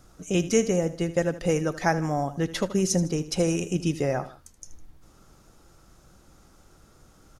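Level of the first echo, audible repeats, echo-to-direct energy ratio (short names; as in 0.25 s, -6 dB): -15.0 dB, 2, -14.0 dB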